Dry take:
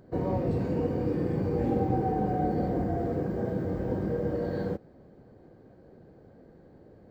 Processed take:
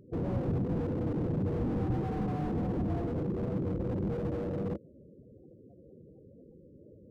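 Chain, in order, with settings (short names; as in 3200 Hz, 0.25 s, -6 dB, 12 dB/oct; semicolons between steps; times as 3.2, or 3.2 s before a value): loudest bins only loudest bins 16; slew limiter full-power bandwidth 9 Hz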